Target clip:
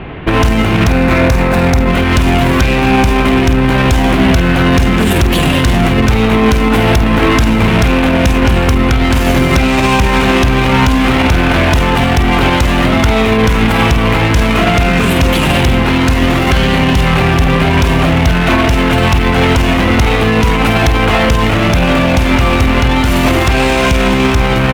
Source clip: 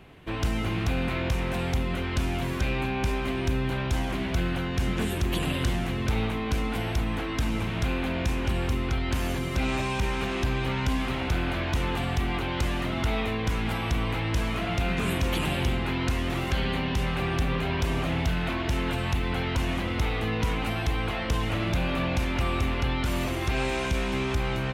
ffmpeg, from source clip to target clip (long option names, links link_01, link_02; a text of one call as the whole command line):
ffmpeg -i in.wav -filter_complex "[0:a]asettb=1/sr,asplit=3[link_01][link_02][link_03];[link_01]atrim=end=0.884[link_04];[link_02]atrim=start=0.88:end=1.89,asetpts=PTS-STARTPTS,afade=type=in:duration=0.004:curve=qsin,afade=type=out:start_time=1.006:duration=0.004:curve=qsin,equalizer=frequency=3100:width_type=o:width=0.31:gain=-9[link_05];[link_03]atrim=start=1.886[link_06];[link_04][link_05]acrossfade=duration=0.004:curve1=hsin:curve2=qsin[link_07];[link_07][link_06]acrossfade=duration=0.004:curve1=qsin:curve2=hsin,asplit=2[link_08][link_09];[link_09]aeval=exprs='0.0237*(abs(mod(val(0)/0.0237+3,4)-2)-1)':channel_layout=same,volume=-6.5dB[link_10];[link_08][link_10]amix=inputs=2:normalize=0,asplit=2[link_11][link_12];[link_12]adelay=50,volume=-10.5dB[link_13];[link_11][link_13]amix=inputs=2:normalize=0,acrossover=split=3300[link_14][link_15];[link_15]aeval=exprs='sgn(val(0))*max(abs(val(0))-0.00299,0)':channel_layout=same[link_16];[link_14][link_16]amix=inputs=2:normalize=0,alimiter=level_in=22.5dB:limit=-1dB:release=50:level=0:latency=1,volume=-1dB" out.wav